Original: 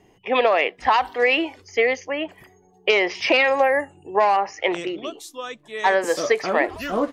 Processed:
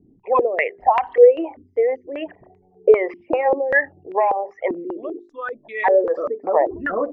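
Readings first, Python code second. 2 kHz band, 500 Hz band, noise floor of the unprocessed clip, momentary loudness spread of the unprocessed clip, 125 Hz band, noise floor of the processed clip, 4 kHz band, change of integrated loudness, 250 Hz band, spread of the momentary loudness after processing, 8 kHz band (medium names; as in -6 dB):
-3.0 dB, +4.0 dB, -56 dBFS, 13 LU, no reading, -57 dBFS, under -15 dB, +1.5 dB, -1.0 dB, 17 LU, under -30 dB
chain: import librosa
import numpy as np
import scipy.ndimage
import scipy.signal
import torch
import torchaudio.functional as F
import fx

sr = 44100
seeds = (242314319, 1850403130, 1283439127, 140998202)

y = fx.envelope_sharpen(x, sr, power=2.0)
y = fx.hum_notches(y, sr, base_hz=50, count=8)
y = fx.filter_held_lowpass(y, sr, hz=5.1, low_hz=260.0, high_hz=2300.0)
y = y * 10.0 ** (-1.0 / 20.0)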